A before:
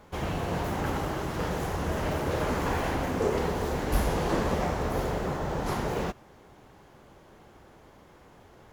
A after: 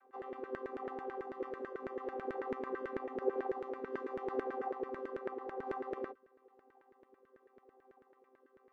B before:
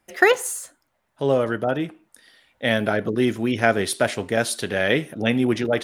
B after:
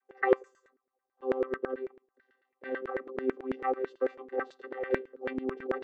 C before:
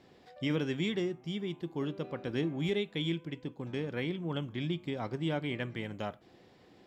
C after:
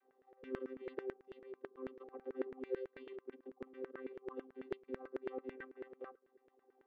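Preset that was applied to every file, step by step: chord vocoder bare fifth, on C4; LFO band-pass saw down 9.1 Hz 400–1800 Hz; harmonic-percussive split harmonic -4 dB

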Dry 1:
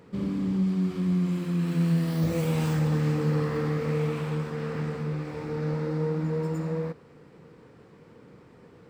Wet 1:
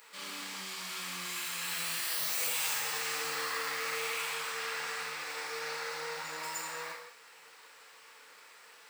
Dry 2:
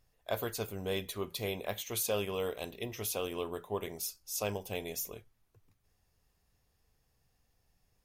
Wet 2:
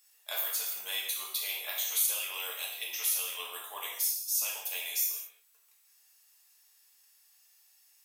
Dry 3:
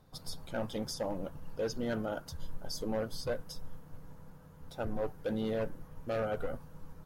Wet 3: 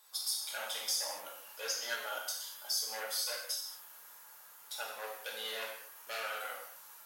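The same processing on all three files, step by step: HPF 980 Hz 12 dB/oct; tilt +4 dB/oct; compressor 2:1, threshold -38 dBFS; whine 7900 Hz -67 dBFS; non-linear reverb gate 0.26 s falling, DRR -3.5 dB

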